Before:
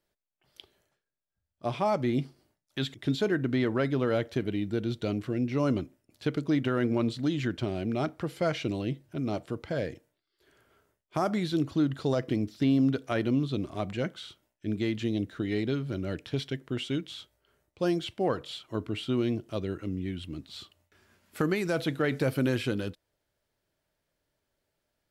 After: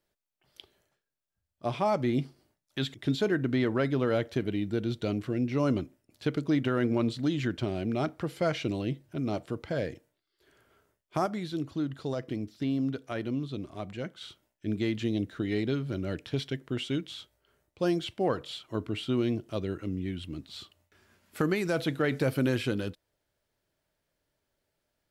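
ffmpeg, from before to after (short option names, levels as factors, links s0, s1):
-filter_complex "[0:a]asplit=3[s0][s1][s2];[s0]atrim=end=11.262[s3];[s1]atrim=start=11.258:end=14.212,asetpts=PTS-STARTPTS,volume=0.531[s4];[s2]atrim=start=14.208[s5];[s3][s4]acrossfade=d=0.004:c1=hsin:c2=hsin[s6];[s6][s5]acrossfade=d=0.004:c1=hsin:c2=hsin"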